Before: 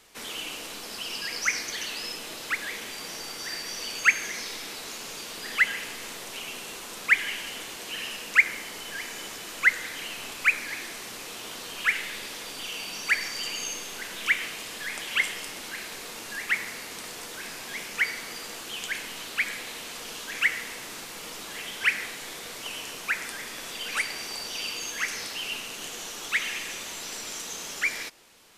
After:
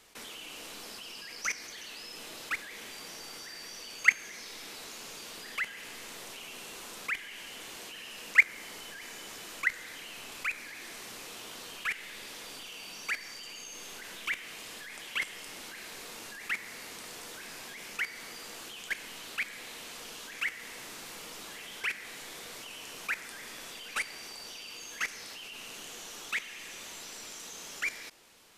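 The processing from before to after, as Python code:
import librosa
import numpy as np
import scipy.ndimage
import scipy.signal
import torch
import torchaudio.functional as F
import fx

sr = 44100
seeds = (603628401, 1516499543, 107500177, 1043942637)

y = fx.level_steps(x, sr, step_db=15)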